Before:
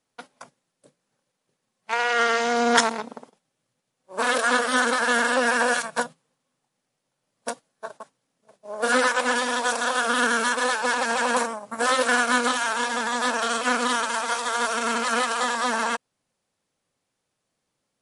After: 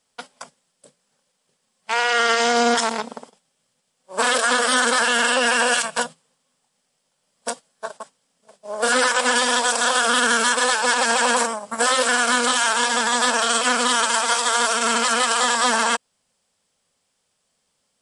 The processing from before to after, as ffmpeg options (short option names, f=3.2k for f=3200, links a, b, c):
-filter_complex "[0:a]asettb=1/sr,asplit=3[a][b][c];[a]atrim=end=5.034[d];[b]atrim=start=5.03:end=6.05,asetpts=PTS-STARTPTS,afade=t=in:d=0.004:c=qsin,afade=t=out:st=1.016:d=0.004:c=qsin,equalizer=f=2.8k:t=o:w=0.3:g=7.5[e];[c]atrim=start=6.046[f];[d][e]acrossfade=d=0.004:c1=hsin:c2=qsin[g];[g][f]acrossfade=d=0.004:c1=qsin:c2=hsin,equalizer=f=125:t=o:w=0.33:g=-10,equalizer=f=315:t=o:w=0.33:g=-10,equalizer=f=3.15k:t=o:w=0.33:g=5,equalizer=f=5k:t=o:w=0.33:g=6,equalizer=f=8k:t=o:w=0.33:g=9,alimiter=level_in=12dB:limit=-1dB:release=50:level=0:latency=1,volume=-7dB"